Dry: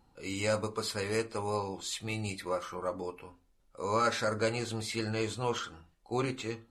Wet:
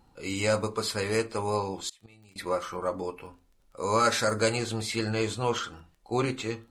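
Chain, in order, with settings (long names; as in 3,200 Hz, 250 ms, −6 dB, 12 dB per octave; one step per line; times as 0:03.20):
0:01.89–0:02.36: gate with flip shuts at −29 dBFS, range −25 dB
surface crackle 21 per second −53 dBFS
0:03.81–0:04.56: high-shelf EQ 8,900 Hz → 5,600 Hz +10.5 dB
level +4.5 dB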